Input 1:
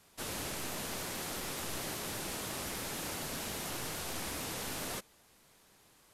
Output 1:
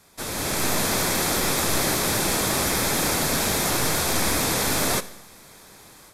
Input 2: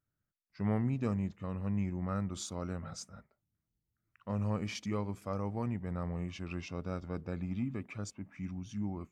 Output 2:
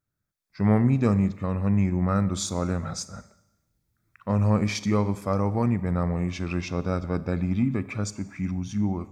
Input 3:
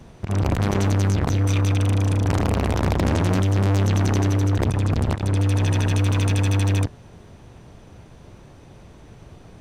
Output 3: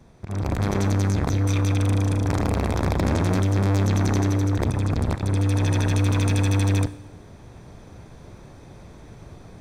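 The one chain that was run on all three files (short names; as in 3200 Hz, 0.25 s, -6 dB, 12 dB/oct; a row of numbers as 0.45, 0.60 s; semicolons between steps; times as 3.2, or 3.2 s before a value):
notch 2900 Hz, Q 6.6; AGC gain up to 8.5 dB; Schroeder reverb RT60 0.93 s, combs from 30 ms, DRR 15.5 dB; normalise peaks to -9 dBFS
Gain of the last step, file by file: +8.0, +3.0, -7.0 dB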